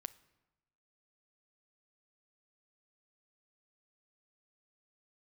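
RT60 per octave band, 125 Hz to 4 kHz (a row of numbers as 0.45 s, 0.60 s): 1.2 s, 1.1 s, 1.0 s, 1.0 s, 0.90 s, 0.75 s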